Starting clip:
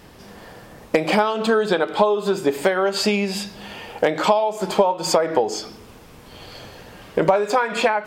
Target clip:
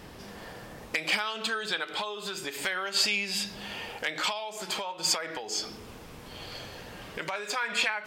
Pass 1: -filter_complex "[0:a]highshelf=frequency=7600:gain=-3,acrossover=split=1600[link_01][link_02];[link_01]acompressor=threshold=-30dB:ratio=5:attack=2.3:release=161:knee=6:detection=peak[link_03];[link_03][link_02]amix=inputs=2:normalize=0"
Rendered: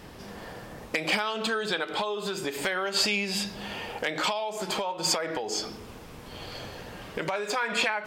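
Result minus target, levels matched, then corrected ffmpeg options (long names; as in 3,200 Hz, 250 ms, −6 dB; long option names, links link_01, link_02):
downward compressor: peak gain reduction −7.5 dB
-filter_complex "[0:a]highshelf=frequency=7600:gain=-3,acrossover=split=1600[link_01][link_02];[link_01]acompressor=threshold=-39.5dB:ratio=5:attack=2.3:release=161:knee=6:detection=peak[link_03];[link_03][link_02]amix=inputs=2:normalize=0"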